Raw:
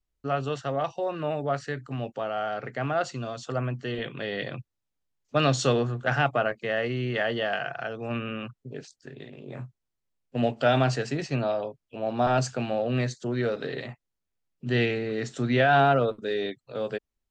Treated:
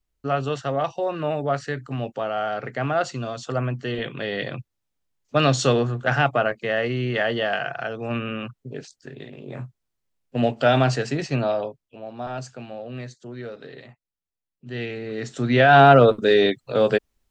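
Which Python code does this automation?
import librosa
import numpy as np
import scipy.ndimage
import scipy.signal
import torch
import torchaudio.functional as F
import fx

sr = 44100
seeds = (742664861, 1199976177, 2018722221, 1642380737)

y = fx.gain(x, sr, db=fx.line((11.64, 4.0), (12.09, -8.0), (14.7, -8.0), (15.09, -1.0), (16.13, 12.0)))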